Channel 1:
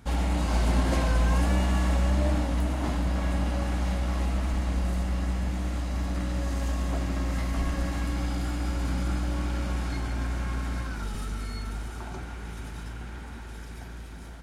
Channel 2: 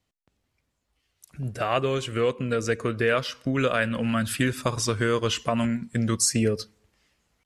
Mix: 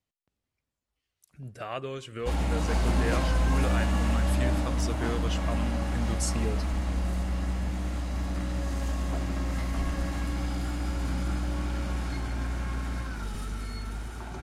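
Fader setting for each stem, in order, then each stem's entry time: -1.5 dB, -10.5 dB; 2.20 s, 0.00 s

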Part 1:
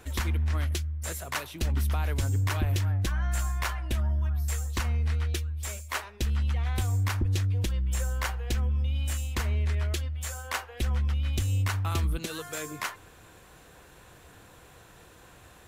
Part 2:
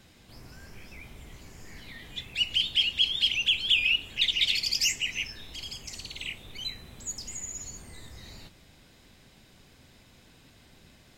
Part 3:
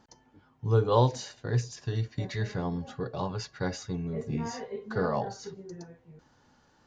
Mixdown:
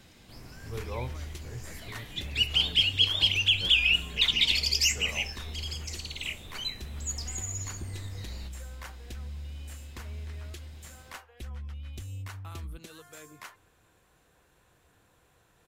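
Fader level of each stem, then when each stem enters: -12.5 dB, +1.0 dB, -14.5 dB; 0.60 s, 0.00 s, 0.00 s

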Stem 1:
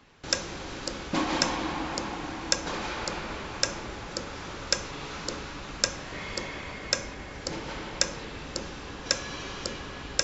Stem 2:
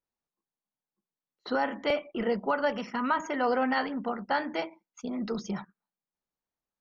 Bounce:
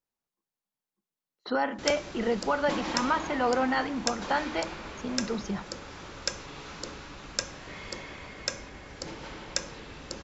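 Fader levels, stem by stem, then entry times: -5.0 dB, +0.5 dB; 1.55 s, 0.00 s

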